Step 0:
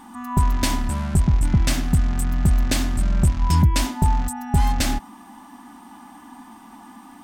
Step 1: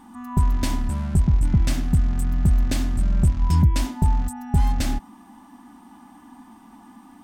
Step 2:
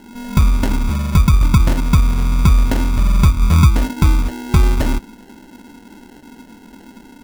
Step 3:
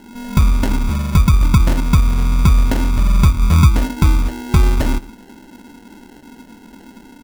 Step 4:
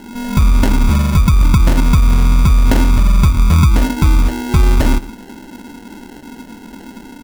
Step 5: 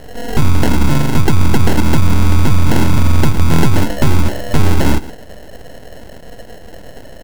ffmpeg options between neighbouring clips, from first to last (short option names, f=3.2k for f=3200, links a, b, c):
-af "lowshelf=f=410:g=7,volume=-7dB"
-af "acrusher=samples=37:mix=1:aa=0.000001,volume=6.5dB"
-filter_complex "[0:a]asplit=2[a][b];[b]adelay=116.6,volume=-20dB,highshelf=f=4k:g=-2.62[c];[a][c]amix=inputs=2:normalize=0"
-af "alimiter=limit=-10.5dB:level=0:latency=1:release=74,volume=6.5dB"
-af "aeval=exprs='abs(val(0))':c=same,volume=2.5dB"